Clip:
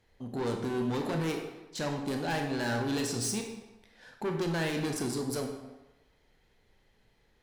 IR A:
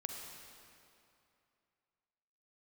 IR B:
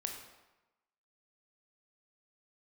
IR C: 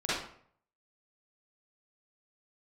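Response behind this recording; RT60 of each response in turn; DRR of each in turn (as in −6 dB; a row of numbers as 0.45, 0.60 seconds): B; 2.7, 1.1, 0.60 seconds; 2.0, 2.5, −11.5 decibels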